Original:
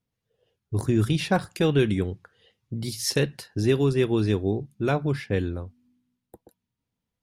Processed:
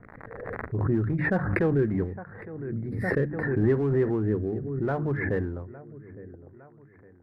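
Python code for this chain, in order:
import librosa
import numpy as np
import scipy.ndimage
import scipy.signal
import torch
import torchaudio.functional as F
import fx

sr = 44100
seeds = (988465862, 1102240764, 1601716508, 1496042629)

p1 = x + fx.echo_feedback(x, sr, ms=860, feedback_pct=40, wet_db=-18.5, dry=0)
p2 = fx.dmg_crackle(p1, sr, seeds[0], per_s=75.0, level_db=-43.0)
p3 = scipy.signal.sosfilt(scipy.signal.ellip(4, 1.0, 40, 1900.0, 'lowpass', fs=sr, output='sos'), p2)
p4 = fx.hum_notches(p3, sr, base_hz=50, count=6)
p5 = np.clip(p4, -10.0 ** (-28.0 / 20.0), 10.0 ** (-28.0 / 20.0))
p6 = p4 + F.gain(torch.from_numpy(p5), -9.0).numpy()
p7 = fx.rotary_switch(p6, sr, hz=8.0, then_hz=0.65, switch_at_s=1.04)
p8 = fx.pre_swell(p7, sr, db_per_s=34.0)
y = F.gain(torch.from_numpy(p8), -2.0).numpy()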